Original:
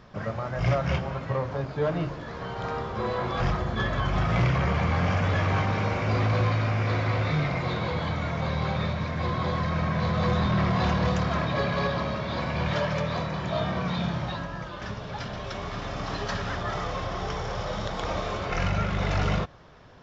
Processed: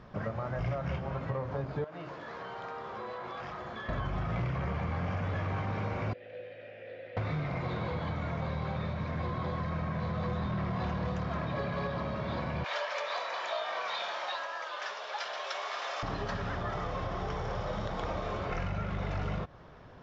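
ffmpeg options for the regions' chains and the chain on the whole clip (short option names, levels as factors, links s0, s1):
-filter_complex "[0:a]asettb=1/sr,asplit=3[s0][s1][s2];[s0]atrim=end=1.844[s3];[s1]atrim=start=1.84:end=3.89,asetpts=PTS-STARTPTS,afade=t=in:d=0.004:c=qsin,afade=t=out:st=2.046:d=0.004:c=qsin,highpass=f=700:p=1,acompressor=threshold=0.0158:ratio=5:attack=3.2:release=140:knee=1:detection=peak[s4];[s2]atrim=start=3.886[s5];[s3][s4]acrossfade=d=0.004:c1=hsin:c2=qsin[s6];[s6][s5]acrossfade=d=0.004:c1=qsin:c2=hsin,asettb=1/sr,asplit=3[s7][s8][s9];[s7]atrim=end=6.134[s10];[s8]atrim=start=6.13:end=7.17,asetpts=PTS-STARTPTS,afade=t=in:d=0.004:c=qsin,afade=t=out:st=1.036:d=0.004:c=qsin,equalizer=f=3300:t=o:w=0.53:g=7.5,acrossover=split=400|2100[s11][s12][s13];[s11]acompressor=threshold=0.0282:ratio=4[s14];[s12]acompressor=threshold=0.0141:ratio=4[s15];[s13]acompressor=threshold=0.00891:ratio=4[s16];[s14][s15][s16]amix=inputs=3:normalize=0,asplit=3[s17][s18][s19];[s17]bandpass=f=530:t=q:w=8,volume=1[s20];[s18]bandpass=f=1840:t=q:w=8,volume=0.501[s21];[s19]bandpass=f=2480:t=q:w=8,volume=0.355[s22];[s20][s21][s22]amix=inputs=3:normalize=0[s23];[s9]atrim=start=7.166[s24];[s10][s23]acrossfade=d=0.004:c1=hsin:c2=qsin[s25];[s25][s24]acrossfade=d=0.004:c1=qsin:c2=hsin,asettb=1/sr,asplit=3[s26][s27][s28];[s26]atrim=end=12.644[s29];[s27]atrim=start=12.64:end=16.03,asetpts=PTS-STARTPTS,afade=t=in:d=0.004:c=qsin,afade=t=out:st=3.386:d=0.004:c=qsin,highpass=f=560:w=0.5412,highpass=f=560:w=1.3066,highshelf=f=2200:g=10.5[s30];[s28]atrim=start=16.026[s31];[s29][s30]acrossfade=d=0.004:c1=hsin:c2=qsin[s32];[s32][s31]acrossfade=d=0.004:c1=qsin:c2=hsin,highshelf=f=3300:g=-10.5,acompressor=threshold=0.0282:ratio=6"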